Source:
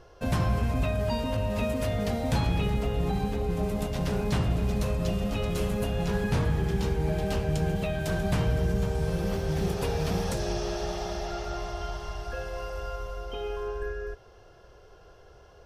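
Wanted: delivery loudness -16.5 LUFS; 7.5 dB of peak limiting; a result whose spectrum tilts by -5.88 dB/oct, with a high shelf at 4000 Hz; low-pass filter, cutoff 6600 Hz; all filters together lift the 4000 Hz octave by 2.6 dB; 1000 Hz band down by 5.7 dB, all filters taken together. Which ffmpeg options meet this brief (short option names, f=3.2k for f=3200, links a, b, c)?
-af "lowpass=6.6k,equalizer=f=1k:t=o:g=-8,highshelf=f=4k:g=-6,equalizer=f=4k:t=o:g=8,volume=17dB,alimiter=limit=-7dB:level=0:latency=1"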